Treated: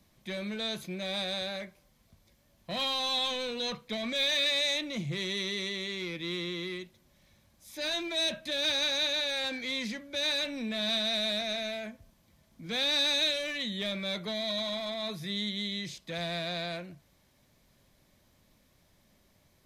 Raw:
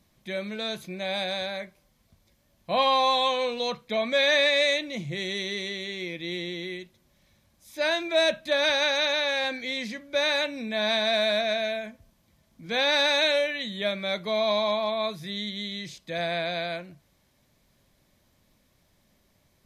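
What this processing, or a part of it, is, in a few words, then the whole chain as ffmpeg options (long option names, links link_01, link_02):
one-band saturation: -filter_complex "[0:a]acrossover=split=260|2800[link_01][link_02][link_03];[link_02]asoftclip=type=tanh:threshold=-37dB[link_04];[link_01][link_04][link_03]amix=inputs=3:normalize=0"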